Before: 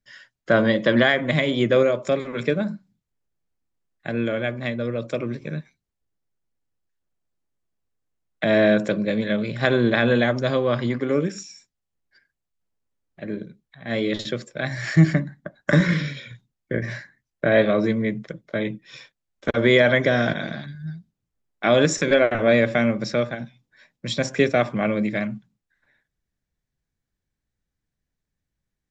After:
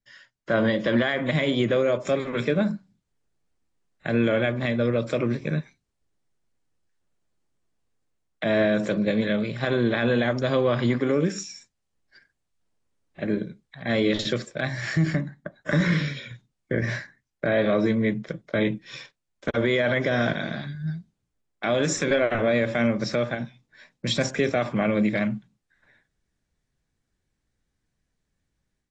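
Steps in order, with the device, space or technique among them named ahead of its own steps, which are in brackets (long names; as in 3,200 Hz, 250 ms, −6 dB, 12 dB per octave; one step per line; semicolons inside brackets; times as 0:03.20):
low-bitrate web radio (automatic gain control gain up to 9 dB; brickwall limiter −8.5 dBFS, peak gain reduction 7.5 dB; level −4.5 dB; AAC 32 kbit/s 22,050 Hz)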